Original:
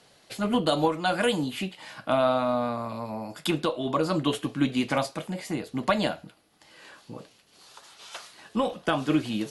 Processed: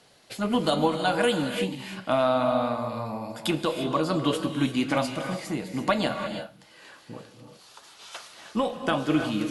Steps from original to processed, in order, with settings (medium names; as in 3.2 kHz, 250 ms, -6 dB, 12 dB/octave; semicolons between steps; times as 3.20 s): gated-style reverb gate 370 ms rising, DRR 6.5 dB